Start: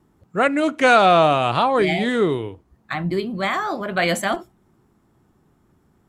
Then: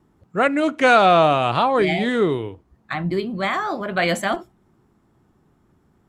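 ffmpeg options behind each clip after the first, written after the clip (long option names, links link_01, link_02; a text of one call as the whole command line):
ffmpeg -i in.wav -af "highshelf=frequency=8100:gain=-6.5" out.wav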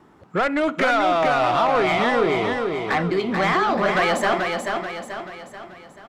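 ffmpeg -i in.wav -filter_complex "[0:a]acompressor=threshold=-26dB:ratio=4,asplit=2[link_01][link_02];[link_02]highpass=frequency=720:poles=1,volume=18dB,asoftclip=type=tanh:threshold=-15dB[link_03];[link_01][link_03]amix=inputs=2:normalize=0,lowpass=frequency=2500:poles=1,volume=-6dB,asplit=2[link_04][link_05];[link_05]aecho=0:1:435|870|1305|1740|2175|2610:0.596|0.28|0.132|0.0618|0.0291|0.0137[link_06];[link_04][link_06]amix=inputs=2:normalize=0,volume=3dB" out.wav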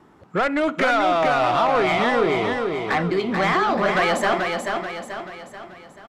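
ffmpeg -i in.wav -af "aresample=32000,aresample=44100" out.wav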